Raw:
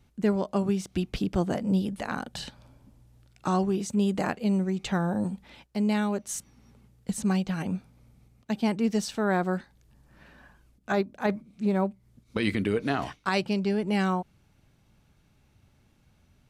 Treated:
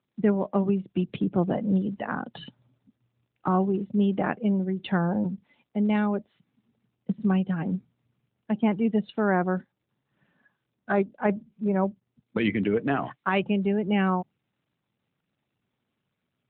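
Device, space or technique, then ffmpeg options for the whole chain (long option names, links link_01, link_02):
mobile call with aggressive noise cancelling: -af "highpass=frequency=110:width=0.5412,highpass=frequency=110:width=1.3066,afftdn=noise_reduction=16:noise_floor=-39,volume=2.5dB" -ar 8000 -c:a libopencore_amrnb -b:a 12200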